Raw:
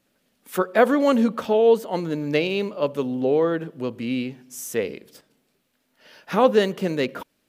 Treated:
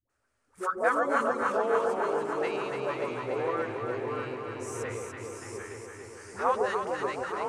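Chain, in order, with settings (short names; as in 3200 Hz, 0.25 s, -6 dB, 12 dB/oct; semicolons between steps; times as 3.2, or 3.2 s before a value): dispersion highs, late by 95 ms, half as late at 530 Hz; vibrato 0.57 Hz 10 cents; echoes that change speed 0.158 s, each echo -2 st, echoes 3, each echo -6 dB; EQ curve 110 Hz 0 dB, 170 Hz -23 dB, 370 Hz -9 dB, 560 Hz -8 dB, 1300 Hz +4 dB, 3500 Hz -14 dB, 5300 Hz -6 dB, 9000 Hz -2 dB, 13000 Hz -24 dB; echo with dull and thin repeats by turns 0.144 s, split 850 Hz, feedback 85%, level -3 dB; gain -4.5 dB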